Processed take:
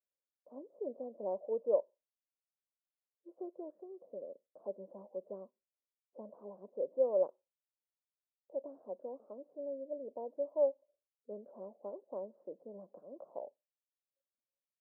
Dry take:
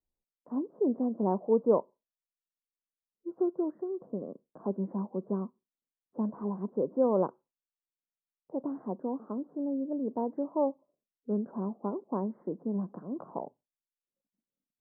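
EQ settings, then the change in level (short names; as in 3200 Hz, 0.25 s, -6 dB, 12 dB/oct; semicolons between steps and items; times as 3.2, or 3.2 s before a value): band-pass 570 Hz, Q 7; +1.0 dB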